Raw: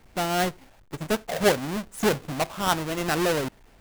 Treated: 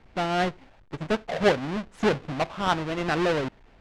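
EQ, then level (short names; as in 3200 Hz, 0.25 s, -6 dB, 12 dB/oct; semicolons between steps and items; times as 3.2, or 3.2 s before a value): LPF 3800 Hz 12 dB/oct; 0.0 dB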